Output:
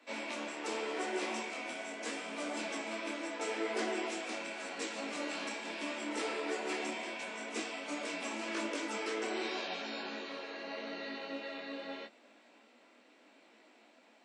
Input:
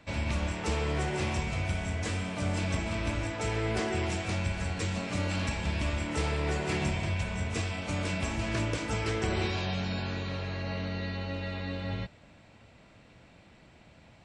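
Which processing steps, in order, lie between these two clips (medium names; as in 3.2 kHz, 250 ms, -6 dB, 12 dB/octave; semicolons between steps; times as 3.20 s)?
steep high-pass 230 Hz 72 dB/octave; detune thickener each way 28 cents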